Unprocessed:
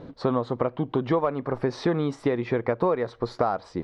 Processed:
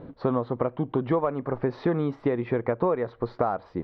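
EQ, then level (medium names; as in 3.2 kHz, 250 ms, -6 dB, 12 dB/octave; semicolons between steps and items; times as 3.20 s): distance through air 340 m; 0.0 dB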